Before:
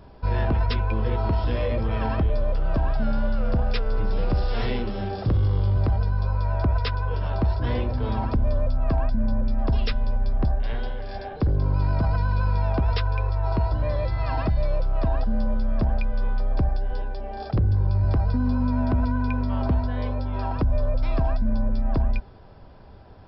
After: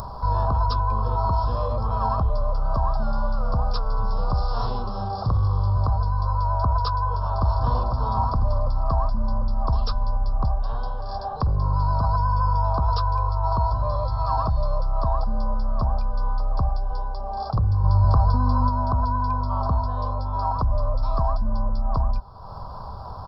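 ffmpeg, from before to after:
-filter_complex "[0:a]asplit=2[s0][s1];[s1]afade=t=in:st=7.15:d=0.01,afade=t=out:st=7.58:d=0.01,aecho=0:1:250|500|750|1000|1250|1500|1750|2000|2250|2500|2750|3000:0.630957|0.473218|0.354914|0.266185|0.199639|0.149729|0.112297|0.0842226|0.063167|0.0473752|0.0355314|0.0266486[s2];[s0][s2]amix=inputs=2:normalize=0,asettb=1/sr,asplit=3[s3][s4][s5];[s3]atrim=end=12.184[s6];[s4]atrim=start=12.18:end=12.65,asetpts=PTS-STARTPTS,afade=t=in:d=0.004:c=qsin,afade=t=out:st=0.466:d=0.004:c=qsin,asuperstop=centerf=4100:order=12:qfactor=7.1[s7];[s5]atrim=start=12.646[s8];[s6][s7]acrossfade=d=0.004:c1=hsin:c2=qsin[s9];[s9][s8]acrossfade=d=0.004:c1=qsin:c2=hsin,asplit=3[s10][s11][s12];[s10]atrim=end=17.842[s13];[s11]atrim=start=17.838:end=18.692,asetpts=PTS-STARTPTS,volume=1.58[s14];[s12]atrim=start=18.688[s15];[s13][s14]acrossfade=d=0.004:c1=hsin:c2=hsin[s16];[s16][s15]acrossfade=d=0.004:c1=hsin:c2=hsin,firequalizer=gain_entry='entry(130,0);entry(320,-13);entry(480,-4);entry(1100,13);entry(2000,-28);entry(4300,2);entry(6900,7)':delay=0.05:min_phase=1,acompressor=mode=upward:threshold=0.0708:ratio=2.5"

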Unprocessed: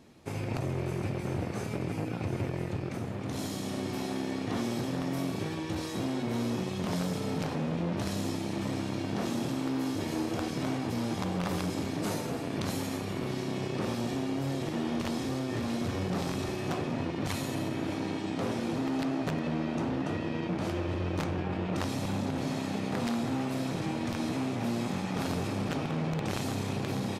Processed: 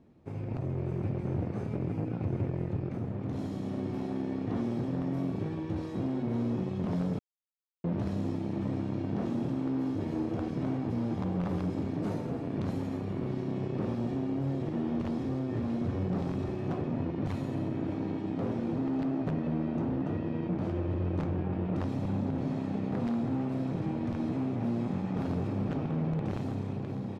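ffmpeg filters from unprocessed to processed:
-filter_complex "[0:a]asplit=3[s0][s1][s2];[s0]atrim=end=7.19,asetpts=PTS-STARTPTS,afade=t=out:st=7.186:d=0.004:c=hsin[s3];[s1]atrim=start=7.19:end=7.84,asetpts=PTS-STARTPTS,volume=0[s4];[s2]atrim=start=7.84,asetpts=PTS-STARTPTS,afade=t=in:d=0.004:c=hsin[s5];[s3][s4][s5]concat=n=3:v=0:a=1,lowpass=f=1200:p=1,lowshelf=f=460:g=7,dynaudnorm=f=120:g=13:m=1.5,volume=0.398"

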